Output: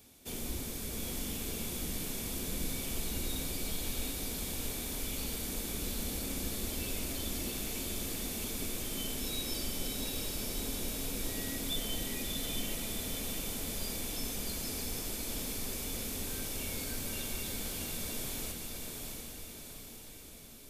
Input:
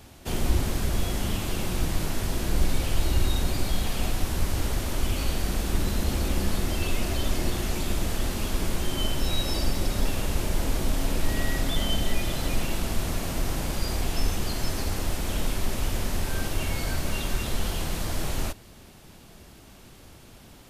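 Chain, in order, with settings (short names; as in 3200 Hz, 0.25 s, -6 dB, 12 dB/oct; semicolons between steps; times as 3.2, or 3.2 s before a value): pre-emphasis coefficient 0.8; small resonant body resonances 250/440/2300/3500 Hz, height 9 dB, ringing for 25 ms; on a send: diffused feedback echo 0.717 s, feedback 55%, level -3 dB; on the sum: gain -4 dB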